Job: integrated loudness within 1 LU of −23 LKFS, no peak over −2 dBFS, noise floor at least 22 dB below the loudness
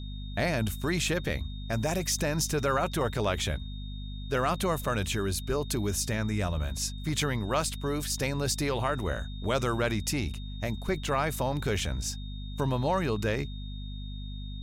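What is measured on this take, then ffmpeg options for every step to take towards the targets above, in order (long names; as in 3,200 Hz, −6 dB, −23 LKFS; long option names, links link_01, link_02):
mains hum 50 Hz; hum harmonics up to 250 Hz; level of the hum −35 dBFS; interfering tone 3,700 Hz; level of the tone −48 dBFS; integrated loudness −30.0 LKFS; sample peak −15.5 dBFS; target loudness −23.0 LKFS
→ -af "bandreject=frequency=50:width_type=h:width=6,bandreject=frequency=100:width_type=h:width=6,bandreject=frequency=150:width_type=h:width=6,bandreject=frequency=200:width_type=h:width=6,bandreject=frequency=250:width_type=h:width=6"
-af "bandreject=frequency=3700:width=30"
-af "volume=7dB"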